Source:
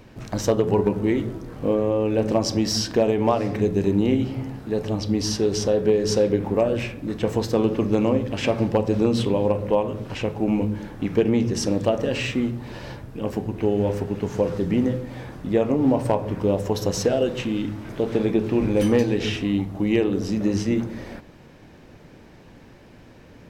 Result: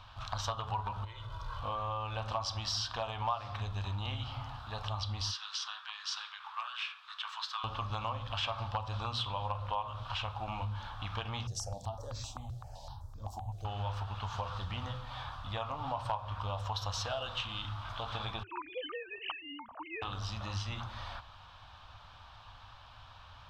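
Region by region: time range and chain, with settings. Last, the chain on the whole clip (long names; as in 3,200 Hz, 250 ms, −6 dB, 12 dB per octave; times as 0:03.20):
0:01.04–0:01.61: downward compressor 10 to 1, threshold −31 dBFS + comb filter 2 ms, depth 94%
0:05.31–0:07.64: inverse Chebyshev high-pass filter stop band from 470 Hz, stop band 50 dB + high-shelf EQ 8,000 Hz −11.5 dB
0:11.47–0:13.65: drawn EQ curve 800 Hz 0 dB, 1,200 Hz −20 dB, 2,900 Hz −21 dB, 6,700 Hz +6 dB + step-sequenced phaser 7.8 Hz 250–2,900 Hz
0:18.43–0:20.02: three sine waves on the formant tracks + low-pass filter 2,900 Hz 24 dB per octave
whole clip: drawn EQ curve 100 Hz 0 dB, 160 Hz −19 dB, 400 Hz −29 dB, 700 Hz −1 dB, 1,200 Hz +11 dB, 2,000 Hz −8 dB, 3,400 Hz +10 dB, 6,600 Hz −7 dB, 11,000 Hz −14 dB; downward compressor 2.5 to 1, threshold −32 dBFS; level −3 dB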